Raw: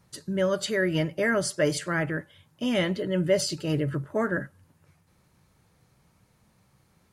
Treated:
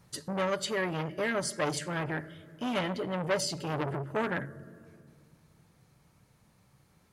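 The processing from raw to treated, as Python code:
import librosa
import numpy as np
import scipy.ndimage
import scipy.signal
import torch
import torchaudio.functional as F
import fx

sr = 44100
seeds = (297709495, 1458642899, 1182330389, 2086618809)

y = fx.rider(x, sr, range_db=10, speed_s=0.5)
y = fx.room_shoebox(y, sr, seeds[0], volume_m3=3900.0, walls='mixed', distance_m=0.35)
y = fx.transformer_sat(y, sr, knee_hz=1400.0)
y = y * librosa.db_to_amplitude(-2.0)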